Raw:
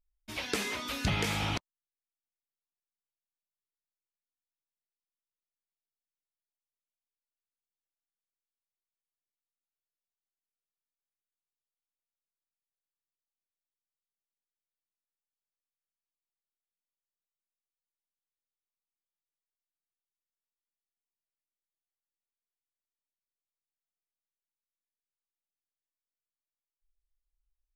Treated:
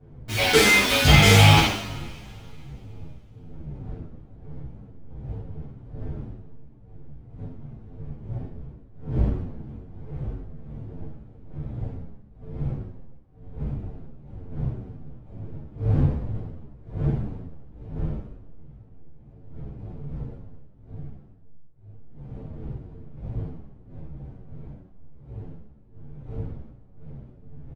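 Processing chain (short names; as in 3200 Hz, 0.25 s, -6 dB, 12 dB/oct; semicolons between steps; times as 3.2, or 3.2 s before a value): level-crossing sampler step -45 dBFS; wind noise 170 Hz -51 dBFS; two-slope reverb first 0.87 s, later 3 s, from -22 dB, DRR -9.5 dB; endless flanger 9 ms -2 Hz; gain +9 dB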